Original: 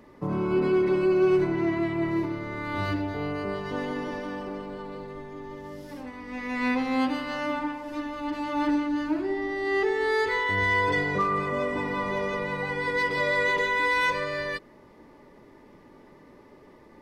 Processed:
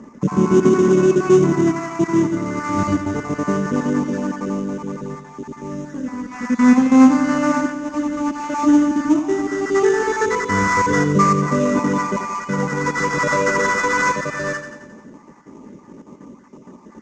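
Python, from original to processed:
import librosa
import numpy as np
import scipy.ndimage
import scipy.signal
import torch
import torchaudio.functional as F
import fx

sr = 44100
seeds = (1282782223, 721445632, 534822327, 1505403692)

p1 = fx.spec_dropout(x, sr, seeds[0], share_pct=33)
p2 = scipy.signal.sosfilt(scipy.signal.butter(2, 48.0, 'highpass', fs=sr, output='sos'), p1)
p3 = fx.echo_feedback(p2, sr, ms=88, feedback_pct=59, wet_db=-10.0)
p4 = fx.sample_hold(p3, sr, seeds[1], rate_hz=3300.0, jitter_pct=20)
p5 = p3 + (p4 * librosa.db_to_amplitude(-5.5))
p6 = fx.curve_eq(p5, sr, hz=(110.0, 220.0, 310.0, 730.0, 1100.0, 1600.0, 2600.0, 4200.0, 6600.0, 11000.0), db=(0, 12, 4, -1, 5, 3, -3, -8, 11, -23))
y = p6 * librosa.db_to_amplitude(3.5)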